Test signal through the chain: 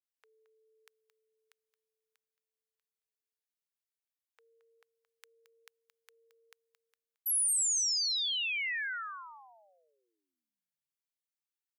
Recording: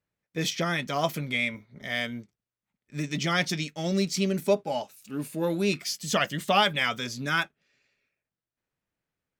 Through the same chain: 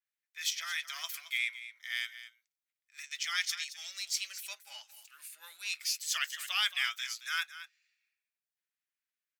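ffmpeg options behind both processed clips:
ffmpeg -i in.wav -af "highpass=frequency=1500:width=0.5412,highpass=frequency=1500:width=1.3066,highshelf=frequency=10000:gain=3.5,aecho=1:1:222:0.211,adynamicequalizer=threshold=0.0126:dfrequency=4000:dqfactor=0.7:tfrequency=4000:tqfactor=0.7:attack=5:release=100:ratio=0.375:range=2:mode=boostabove:tftype=highshelf,volume=-5dB" out.wav

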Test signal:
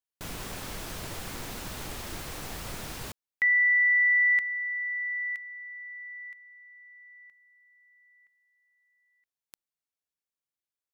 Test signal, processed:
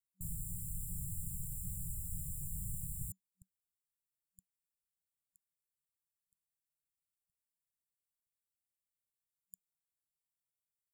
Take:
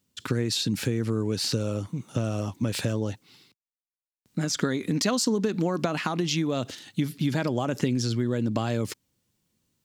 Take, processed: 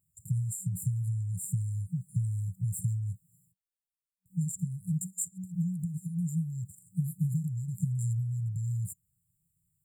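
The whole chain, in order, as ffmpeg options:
ffmpeg -i in.wav -af "afftfilt=real='re*(1-between(b*sr/4096,190,7100))':imag='im*(1-between(b*sr/4096,190,7100))':win_size=4096:overlap=0.75" out.wav

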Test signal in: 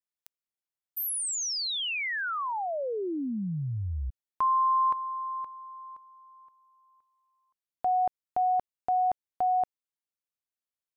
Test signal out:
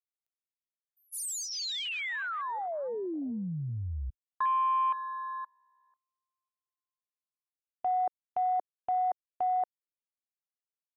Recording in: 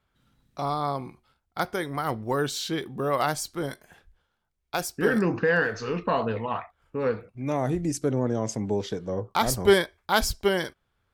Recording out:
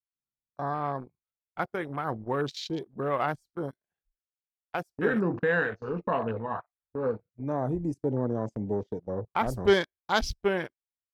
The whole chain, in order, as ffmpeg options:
ffmpeg -i in.wav -af "afwtdn=0.02,agate=range=-19dB:threshold=-40dB:ratio=16:release=31:detection=peak,volume=-3dB" out.wav

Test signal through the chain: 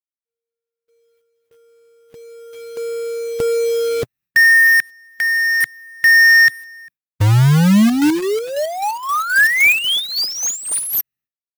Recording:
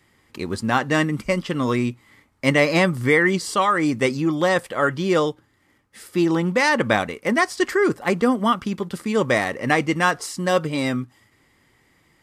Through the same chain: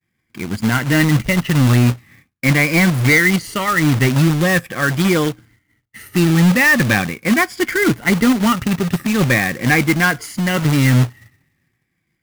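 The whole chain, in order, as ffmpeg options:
ffmpeg -i in.wav -af "afftfilt=real='re*pow(10,10/40*sin(2*PI*(1.8*log(max(b,1)*sr/1024/100)/log(2)-(-0.42)*(pts-256)/sr)))':imag='im*pow(10,10/40*sin(2*PI*(1.8*log(max(b,1)*sr/1024/100)/log(2)-(-0.42)*(pts-256)/sr)))':win_size=1024:overlap=0.75,agate=range=-33dB:threshold=-50dB:ratio=3:detection=peak,equalizer=frequency=125:width_type=o:width=1:gain=8,equalizer=frequency=500:width_type=o:width=1:gain=-9,equalizer=frequency=1000:width_type=o:width=1:gain=-10,equalizer=frequency=2000:width_type=o:width=1:gain=5,equalizer=frequency=4000:width_type=o:width=1:gain=-8,equalizer=frequency=8000:width_type=o:width=1:gain=-11,dynaudnorm=framelen=150:gausssize=11:maxgain=5.5dB,asoftclip=type=tanh:threshold=-8dB,acrusher=bits=2:mode=log:mix=0:aa=0.000001,volume=3dB" out.wav

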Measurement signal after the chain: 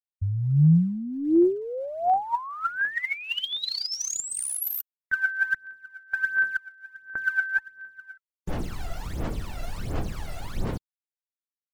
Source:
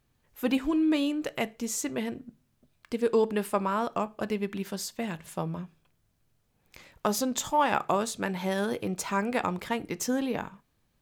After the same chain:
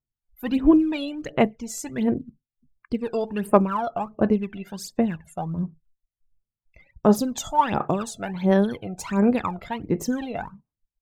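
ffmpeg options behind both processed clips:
ffmpeg -i in.wav -af "afftdn=noise_reduction=32:noise_floor=-49,tiltshelf=frequency=880:gain=3.5,aphaser=in_gain=1:out_gain=1:delay=1.5:decay=0.76:speed=1.4:type=sinusoidal,volume=-1.5dB" out.wav

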